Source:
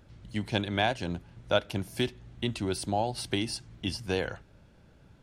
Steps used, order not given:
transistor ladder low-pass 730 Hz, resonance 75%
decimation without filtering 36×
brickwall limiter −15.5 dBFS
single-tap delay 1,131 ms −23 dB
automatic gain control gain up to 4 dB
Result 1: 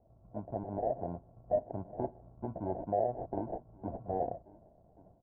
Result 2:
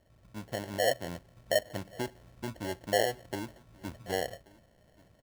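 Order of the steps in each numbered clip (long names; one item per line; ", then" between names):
automatic gain control, then single-tap delay, then brickwall limiter, then decimation without filtering, then transistor ladder low-pass
brickwall limiter, then transistor ladder low-pass, then decimation without filtering, then single-tap delay, then automatic gain control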